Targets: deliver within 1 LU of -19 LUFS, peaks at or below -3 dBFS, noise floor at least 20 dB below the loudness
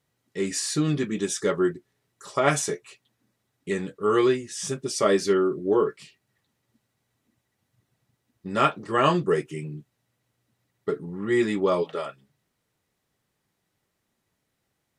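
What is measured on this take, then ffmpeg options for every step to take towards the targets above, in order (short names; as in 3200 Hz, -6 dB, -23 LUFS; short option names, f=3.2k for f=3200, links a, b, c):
loudness -25.0 LUFS; peak -7.0 dBFS; loudness target -19.0 LUFS
-> -af "volume=6dB,alimiter=limit=-3dB:level=0:latency=1"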